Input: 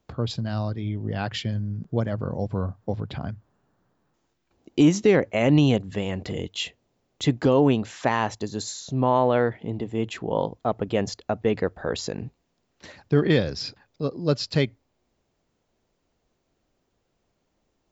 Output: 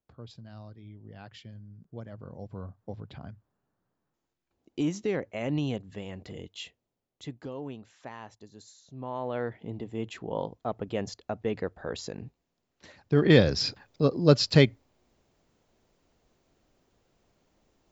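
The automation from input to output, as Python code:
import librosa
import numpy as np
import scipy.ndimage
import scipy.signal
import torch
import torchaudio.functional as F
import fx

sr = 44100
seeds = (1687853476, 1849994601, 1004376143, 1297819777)

y = fx.gain(x, sr, db=fx.line((1.74, -18.5), (2.83, -11.5), (6.65, -11.5), (7.52, -20.0), (8.84, -20.0), (9.6, -7.5), (13.0, -7.5), (13.4, 3.5)))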